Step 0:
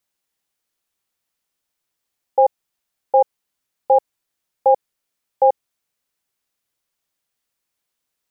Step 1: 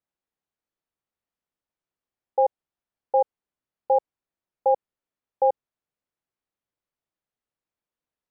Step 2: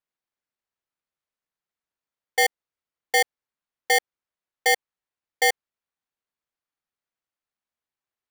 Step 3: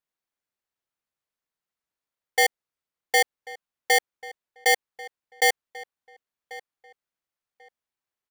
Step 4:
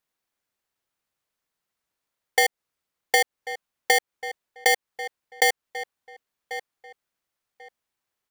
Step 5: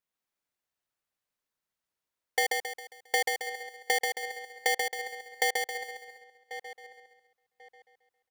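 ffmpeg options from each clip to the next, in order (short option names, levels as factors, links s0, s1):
-af "lowpass=f=1000:p=1,volume=0.596"
-af "aeval=exprs='val(0)*sgn(sin(2*PI*1300*n/s))':c=same"
-filter_complex "[0:a]asplit=2[s0][s1];[s1]adelay=1090,lowpass=f=2700:p=1,volume=0.126,asplit=2[s2][s3];[s3]adelay=1090,lowpass=f=2700:p=1,volume=0.23[s4];[s0][s2][s4]amix=inputs=3:normalize=0"
-af "acompressor=threshold=0.0708:ratio=6,volume=2.11"
-af "aecho=1:1:135|270|405|540|675:0.631|0.271|0.117|0.0502|0.0216,volume=0.422"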